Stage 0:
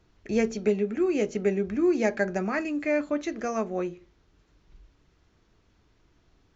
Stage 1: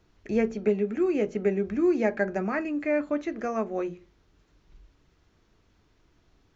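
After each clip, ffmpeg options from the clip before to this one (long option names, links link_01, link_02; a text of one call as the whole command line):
ffmpeg -i in.wav -filter_complex "[0:a]bandreject=frequency=60:width_type=h:width=6,bandreject=frequency=120:width_type=h:width=6,bandreject=frequency=180:width_type=h:width=6,acrossover=split=2700[link_01][link_02];[link_02]acompressor=threshold=-57dB:ratio=4[link_03];[link_01][link_03]amix=inputs=2:normalize=0" out.wav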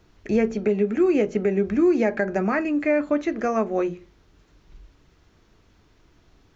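ffmpeg -i in.wav -af "alimiter=limit=-18dB:level=0:latency=1:release=121,volume=6.5dB" out.wav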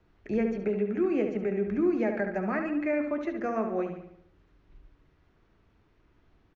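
ffmpeg -i in.wav -filter_complex "[0:a]acrossover=split=290|740|2900[link_01][link_02][link_03][link_04];[link_04]adynamicsmooth=sensitivity=6.5:basefreq=3900[link_05];[link_01][link_02][link_03][link_05]amix=inputs=4:normalize=0,asplit=2[link_06][link_07];[link_07]adelay=71,lowpass=frequency=4400:poles=1,volume=-6.5dB,asplit=2[link_08][link_09];[link_09]adelay=71,lowpass=frequency=4400:poles=1,volume=0.53,asplit=2[link_10][link_11];[link_11]adelay=71,lowpass=frequency=4400:poles=1,volume=0.53,asplit=2[link_12][link_13];[link_13]adelay=71,lowpass=frequency=4400:poles=1,volume=0.53,asplit=2[link_14][link_15];[link_15]adelay=71,lowpass=frequency=4400:poles=1,volume=0.53,asplit=2[link_16][link_17];[link_17]adelay=71,lowpass=frequency=4400:poles=1,volume=0.53,asplit=2[link_18][link_19];[link_19]adelay=71,lowpass=frequency=4400:poles=1,volume=0.53[link_20];[link_06][link_08][link_10][link_12][link_14][link_16][link_18][link_20]amix=inputs=8:normalize=0,volume=-7.5dB" out.wav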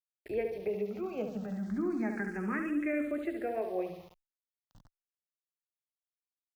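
ffmpeg -i in.wav -filter_complex "[0:a]aeval=exprs='val(0)*gte(abs(val(0)),0.00422)':channel_layout=same,asplit=2[link_01][link_02];[link_02]afreqshift=0.31[link_03];[link_01][link_03]amix=inputs=2:normalize=1,volume=-2dB" out.wav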